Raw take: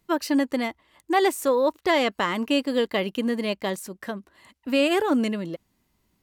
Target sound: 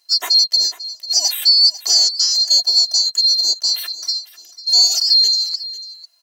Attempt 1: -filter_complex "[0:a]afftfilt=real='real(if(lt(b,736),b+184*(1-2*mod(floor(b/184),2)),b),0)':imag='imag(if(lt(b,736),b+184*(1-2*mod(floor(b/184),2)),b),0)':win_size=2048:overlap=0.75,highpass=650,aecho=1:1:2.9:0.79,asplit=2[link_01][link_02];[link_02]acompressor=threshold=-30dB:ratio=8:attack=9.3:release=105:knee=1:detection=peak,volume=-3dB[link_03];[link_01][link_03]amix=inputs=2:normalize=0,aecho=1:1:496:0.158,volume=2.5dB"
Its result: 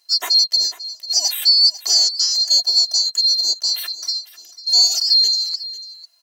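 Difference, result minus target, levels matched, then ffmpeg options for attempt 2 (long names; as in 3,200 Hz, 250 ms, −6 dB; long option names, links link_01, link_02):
downward compressor: peak gain reduction +7.5 dB
-filter_complex "[0:a]afftfilt=real='real(if(lt(b,736),b+184*(1-2*mod(floor(b/184),2)),b),0)':imag='imag(if(lt(b,736),b+184*(1-2*mod(floor(b/184),2)),b),0)':win_size=2048:overlap=0.75,highpass=650,aecho=1:1:2.9:0.79,asplit=2[link_01][link_02];[link_02]acompressor=threshold=-21.5dB:ratio=8:attack=9.3:release=105:knee=1:detection=peak,volume=-3dB[link_03];[link_01][link_03]amix=inputs=2:normalize=0,aecho=1:1:496:0.158,volume=2.5dB"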